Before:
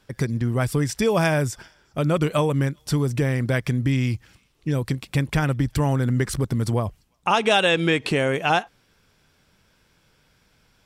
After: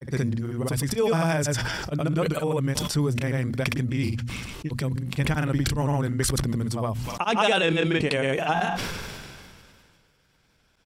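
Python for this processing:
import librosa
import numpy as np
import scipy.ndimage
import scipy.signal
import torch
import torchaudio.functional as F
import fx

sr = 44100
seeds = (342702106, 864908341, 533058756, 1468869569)

y = fx.hum_notches(x, sr, base_hz=60, count=4)
y = fx.granulator(y, sr, seeds[0], grain_ms=100.0, per_s=20.0, spray_ms=100.0, spread_st=0)
y = fx.sustainer(y, sr, db_per_s=27.0)
y = y * librosa.db_to_amplitude(-2.5)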